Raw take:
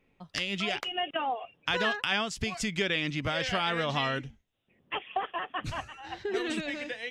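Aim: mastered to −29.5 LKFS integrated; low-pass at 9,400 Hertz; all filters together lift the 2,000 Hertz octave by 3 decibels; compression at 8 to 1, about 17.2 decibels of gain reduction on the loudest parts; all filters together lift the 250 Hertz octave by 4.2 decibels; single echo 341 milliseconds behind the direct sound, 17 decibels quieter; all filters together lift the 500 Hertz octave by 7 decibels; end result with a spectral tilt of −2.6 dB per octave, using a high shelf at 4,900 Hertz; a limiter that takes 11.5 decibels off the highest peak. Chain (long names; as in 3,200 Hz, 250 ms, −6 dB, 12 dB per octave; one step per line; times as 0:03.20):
low-pass filter 9,400 Hz
parametric band 250 Hz +3 dB
parametric band 500 Hz +8 dB
parametric band 2,000 Hz +4 dB
high-shelf EQ 4,900 Hz −4.5 dB
downward compressor 8 to 1, threshold −38 dBFS
brickwall limiter −30.5 dBFS
single-tap delay 341 ms −17 dB
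level +13 dB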